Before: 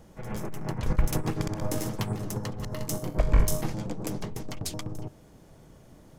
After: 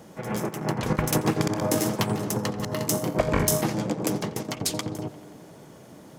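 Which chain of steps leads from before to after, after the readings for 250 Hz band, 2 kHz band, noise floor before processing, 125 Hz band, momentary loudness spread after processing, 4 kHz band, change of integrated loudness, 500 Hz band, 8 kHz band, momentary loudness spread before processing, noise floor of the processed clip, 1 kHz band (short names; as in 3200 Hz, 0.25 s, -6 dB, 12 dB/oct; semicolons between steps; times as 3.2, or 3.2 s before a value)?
+7.0 dB, +8.0 dB, -54 dBFS, +1.5 dB, 9 LU, +8.0 dB, +5.0 dB, +8.0 dB, +8.0 dB, 11 LU, -48 dBFS, +8.0 dB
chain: HPF 160 Hz 12 dB/oct; on a send: tape echo 87 ms, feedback 82%, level -15.5 dB, low-pass 3800 Hz; on the sum: gain +8 dB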